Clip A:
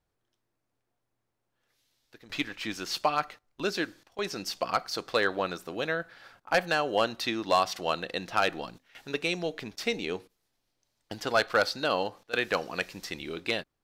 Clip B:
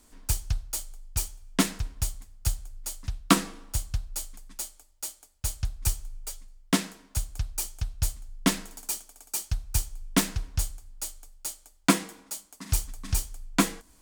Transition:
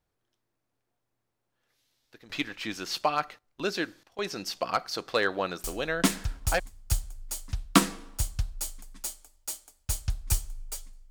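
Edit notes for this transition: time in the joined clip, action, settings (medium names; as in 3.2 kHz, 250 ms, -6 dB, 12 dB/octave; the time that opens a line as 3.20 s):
clip A
6.12 s: go over to clip B from 1.67 s, crossfade 0.96 s logarithmic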